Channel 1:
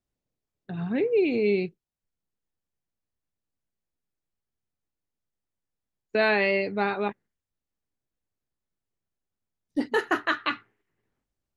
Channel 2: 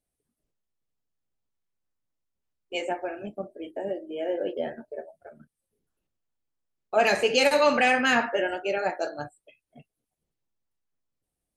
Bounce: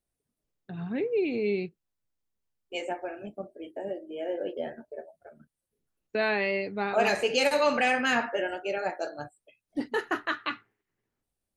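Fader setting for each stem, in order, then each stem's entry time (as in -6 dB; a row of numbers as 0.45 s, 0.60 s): -4.5 dB, -3.5 dB; 0.00 s, 0.00 s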